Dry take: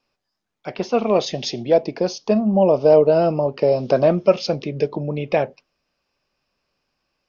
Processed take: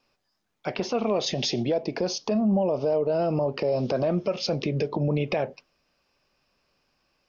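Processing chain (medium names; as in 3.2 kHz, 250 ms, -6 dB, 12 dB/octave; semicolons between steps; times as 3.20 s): compression 4:1, threshold -20 dBFS, peak gain reduction 10.5 dB; peak limiter -19.5 dBFS, peak gain reduction 10 dB; trim +3 dB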